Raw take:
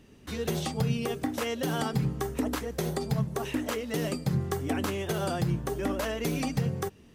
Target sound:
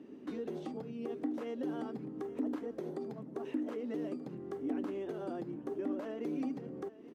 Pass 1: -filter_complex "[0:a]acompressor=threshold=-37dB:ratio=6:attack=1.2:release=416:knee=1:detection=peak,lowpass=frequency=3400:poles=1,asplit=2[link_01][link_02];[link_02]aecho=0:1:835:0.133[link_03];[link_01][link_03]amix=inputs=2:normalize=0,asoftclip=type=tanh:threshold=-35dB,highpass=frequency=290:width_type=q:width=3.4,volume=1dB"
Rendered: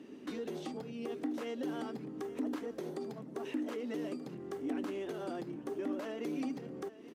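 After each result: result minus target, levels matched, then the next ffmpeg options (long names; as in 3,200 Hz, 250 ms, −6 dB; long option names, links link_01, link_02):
soft clipping: distortion +14 dB; 4,000 Hz band +8.0 dB
-filter_complex "[0:a]acompressor=threshold=-37dB:ratio=6:attack=1.2:release=416:knee=1:detection=peak,lowpass=frequency=3400:poles=1,asplit=2[link_01][link_02];[link_02]aecho=0:1:835:0.133[link_03];[link_01][link_03]amix=inputs=2:normalize=0,asoftclip=type=tanh:threshold=-27.5dB,highpass=frequency=290:width_type=q:width=3.4,volume=1dB"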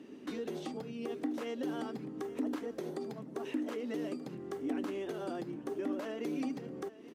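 4,000 Hz band +8.0 dB
-filter_complex "[0:a]acompressor=threshold=-37dB:ratio=6:attack=1.2:release=416:knee=1:detection=peak,lowpass=frequency=900:poles=1,asplit=2[link_01][link_02];[link_02]aecho=0:1:835:0.133[link_03];[link_01][link_03]amix=inputs=2:normalize=0,asoftclip=type=tanh:threshold=-27.5dB,highpass=frequency=290:width_type=q:width=3.4,volume=1dB"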